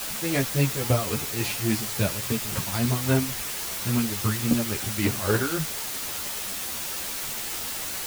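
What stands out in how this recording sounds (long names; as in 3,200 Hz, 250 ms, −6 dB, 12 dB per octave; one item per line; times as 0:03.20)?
tremolo triangle 3.6 Hz, depth 80%
a quantiser's noise floor 6 bits, dither triangular
a shimmering, thickened sound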